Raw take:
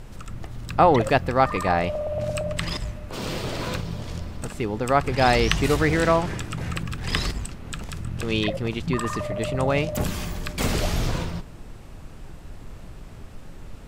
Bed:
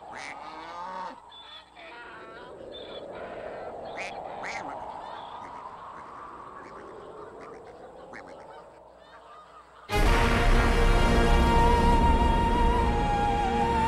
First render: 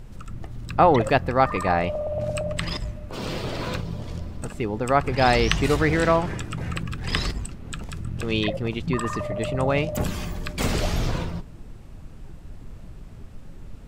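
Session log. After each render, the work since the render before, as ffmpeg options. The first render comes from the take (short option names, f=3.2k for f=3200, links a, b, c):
-af "afftdn=nr=6:nf=-41"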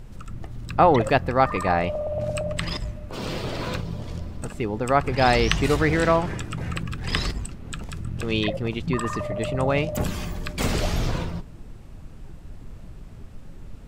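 -af anull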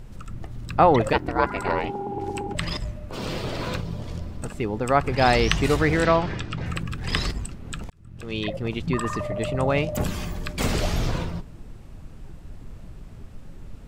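-filter_complex "[0:a]asettb=1/sr,asplit=3[a][b][c];[a]atrim=end=1.134[d];[b]atrim=start=1.13:end=2.55,asetpts=PTS-STARTPTS,afade=t=in:d=0.004:c=qsin,afade=t=out:st=1.416:d=0.004:c=qsin,aeval=exprs='val(0)*sin(2*PI*210*n/s)':c=same[e];[c]atrim=start=2.546[f];[d][e]acrossfade=d=0.004:c1=hsin:c2=qsin[g];[g][f]acrossfade=d=0.004:c1=qsin:c2=hsin,asettb=1/sr,asplit=3[h][i][j];[h]atrim=end=6.054[k];[i]atrim=start=6.05:end=6.66,asetpts=PTS-STARTPTS,afade=t=in:d=0.004:c=qsin,afade=t=out:st=0.606:d=0.004:c=qsin,lowpass=f=4.5k:t=q:w=1.6[l];[j]atrim=start=6.656[m];[k][l]acrossfade=d=0.004:c1=hsin:c2=qsin[n];[n][m]acrossfade=d=0.004:c1=qsin:c2=hsin,asplit=2[o][p];[o]atrim=end=7.9,asetpts=PTS-STARTPTS,afade=t=out:st=7.896:d=0.004:c=hsin[q];[p]atrim=start=7.9,asetpts=PTS-STARTPTS,afade=t=in:d=0.86[r];[q][r]concat=n=2:v=0:a=1"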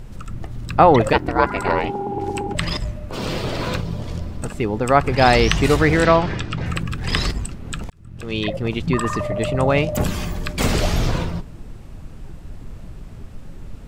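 -af "volume=5dB,alimiter=limit=-1dB:level=0:latency=1"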